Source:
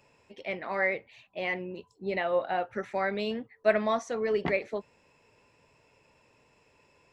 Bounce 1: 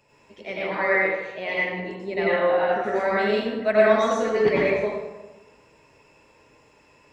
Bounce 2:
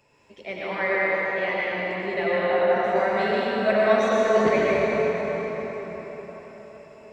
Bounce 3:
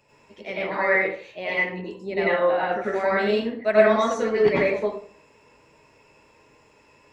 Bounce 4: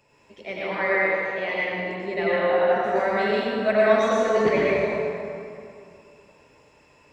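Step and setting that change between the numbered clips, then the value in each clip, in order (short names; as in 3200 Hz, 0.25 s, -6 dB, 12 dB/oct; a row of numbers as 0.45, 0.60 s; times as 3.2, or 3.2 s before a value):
plate-style reverb, RT60: 1.1, 5.2, 0.52, 2.5 s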